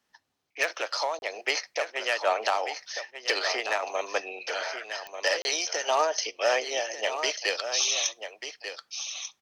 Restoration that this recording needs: clip repair -13.5 dBFS; de-click; interpolate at 1.19/5.42, 31 ms; inverse comb 1.191 s -9.5 dB

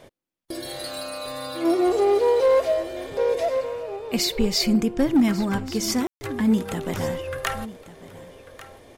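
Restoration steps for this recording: clip repair -12.5 dBFS; room tone fill 6.07–6.21; inverse comb 1.144 s -17 dB

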